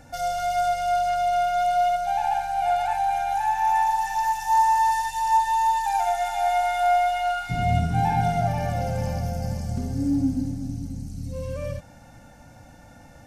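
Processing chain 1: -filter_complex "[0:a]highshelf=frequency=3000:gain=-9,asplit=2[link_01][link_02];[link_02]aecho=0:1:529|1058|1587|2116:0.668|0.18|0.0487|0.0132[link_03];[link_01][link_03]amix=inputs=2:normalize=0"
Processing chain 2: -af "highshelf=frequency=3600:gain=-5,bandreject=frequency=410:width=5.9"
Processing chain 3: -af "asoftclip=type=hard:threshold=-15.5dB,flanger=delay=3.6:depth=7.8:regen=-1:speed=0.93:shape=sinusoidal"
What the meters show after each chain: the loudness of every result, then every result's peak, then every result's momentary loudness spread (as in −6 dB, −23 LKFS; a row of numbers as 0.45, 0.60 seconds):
−22.0, −24.0, −26.5 LKFS; −10.0, −10.0, −15.5 dBFS; 10, 11, 12 LU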